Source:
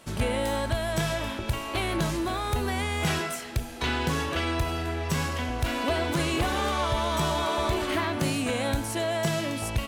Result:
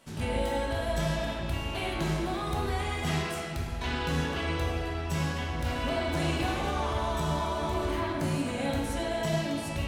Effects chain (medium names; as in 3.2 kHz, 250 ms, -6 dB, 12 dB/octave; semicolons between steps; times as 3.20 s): 6.55–8.59 s: peaking EQ 2.8 kHz -4.5 dB 1.9 oct; reverberation RT60 2.0 s, pre-delay 4 ms, DRR -3.5 dB; trim -8.5 dB